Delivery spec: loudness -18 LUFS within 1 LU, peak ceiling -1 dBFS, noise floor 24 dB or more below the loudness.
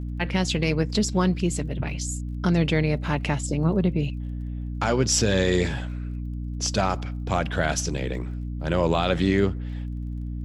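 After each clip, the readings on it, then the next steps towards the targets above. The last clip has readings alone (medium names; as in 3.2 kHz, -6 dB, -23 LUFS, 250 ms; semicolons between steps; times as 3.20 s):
tick rate 26 per s; hum 60 Hz; highest harmonic 300 Hz; hum level -28 dBFS; loudness -25.0 LUFS; peak level -8.5 dBFS; loudness target -18.0 LUFS
-> de-click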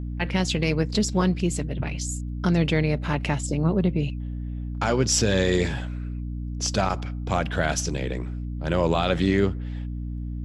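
tick rate 0.19 per s; hum 60 Hz; highest harmonic 300 Hz; hum level -28 dBFS
-> de-hum 60 Hz, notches 5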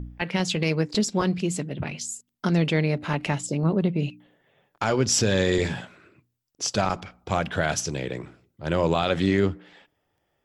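hum not found; loudness -25.5 LUFS; peak level -9.5 dBFS; loudness target -18.0 LUFS
-> trim +7.5 dB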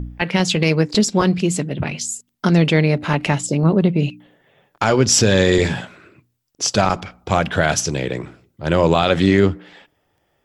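loudness -18.0 LUFS; peak level -2.0 dBFS; noise floor -68 dBFS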